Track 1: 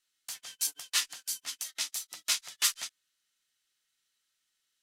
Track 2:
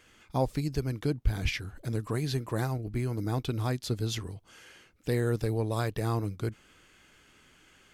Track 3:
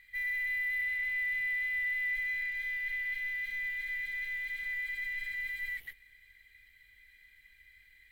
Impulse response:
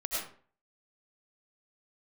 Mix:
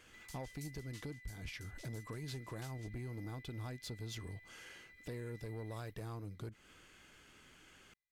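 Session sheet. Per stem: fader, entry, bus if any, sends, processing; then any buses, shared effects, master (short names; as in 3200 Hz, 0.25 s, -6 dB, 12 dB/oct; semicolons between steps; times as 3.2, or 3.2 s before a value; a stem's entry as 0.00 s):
-11.0 dB, 0.00 s, no send, compressor 2.5:1, threshold -34 dBFS, peak gain reduction 8.5 dB; auto duck -12 dB, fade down 0.90 s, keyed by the second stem
-2.0 dB, 0.00 s, no send, compressor 6:1, threshold -38 dBFS, peak gain reduction 18.5 dB; soft clip -35.5 dBFS, distortion -15 dB
-16.0 dB, 0.00 s, no send, minimum comb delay 5 ms; gate with hold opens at -50 dBFS; compressor 5:1, threshold -44 dBFS, peak gain reduction 11.5 dB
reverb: off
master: dry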